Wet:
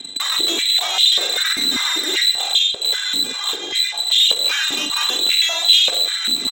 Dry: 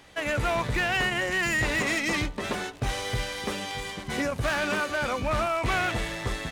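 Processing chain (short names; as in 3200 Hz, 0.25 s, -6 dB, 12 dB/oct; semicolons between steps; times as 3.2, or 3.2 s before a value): minimum comb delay 2.5 ms; reverb removal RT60 0.97 s; tilt -4.5 dB/oct; in parallel at +2 dB: limiter -32.5 dBFS, peak gain reduction 29 dB; on the sum: one-sided clip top -23.5 dBFS, bottom -22.5 dBFS; inverted band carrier 4000 Hz; added harmonics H 6 -13 dB, 7 -32 dB, 8 -28 dB, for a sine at -15.5 dBFS; doubler 43 ms -7 dB; on a send at -10 dB: reverb RT60 0.70 s, pre-delay 0.149 s; on the sum: stepped high-pass 5.1 Hz 250–3100 Hz; gain +3 dB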